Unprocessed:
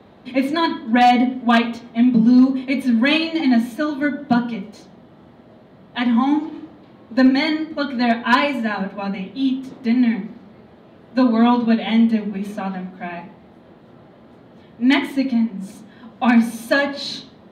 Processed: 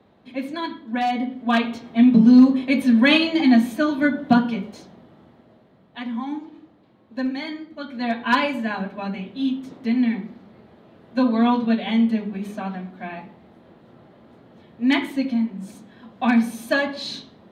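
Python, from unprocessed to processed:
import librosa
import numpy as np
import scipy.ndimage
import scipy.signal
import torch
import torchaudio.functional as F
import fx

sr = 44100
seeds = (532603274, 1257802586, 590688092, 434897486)

y = fx.gain(x, sr, db=fx.line((1.13, -9.5), (1.99, 1.0), (4.64, 1.0), (6.05, -11.5), (7.79, -11.5), (8.28, -3.5)))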